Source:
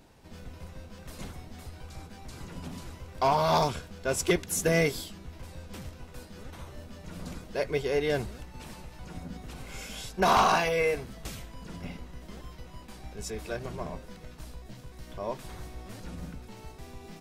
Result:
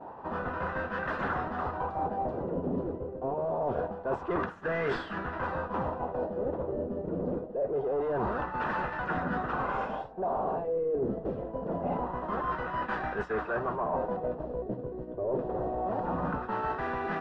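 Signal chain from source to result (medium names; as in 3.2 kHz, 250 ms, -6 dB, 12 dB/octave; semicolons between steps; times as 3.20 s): overdrive pedal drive 28 dB, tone 2.3 kHz, clips at -16 dBFS; band-stop 2.2 kHz, Q 5.8; in parallel at +2 dB: upward compressor, threshold -27 dBFS; on the sum: LFO low-pass sine 0.25 Hz 430–1600 Hz; expander -18 dBFS; reverse; compression 16:1, threshold -24 dBFS, peak gain reduction 17.5 dB; reverse; trim -3.5 dB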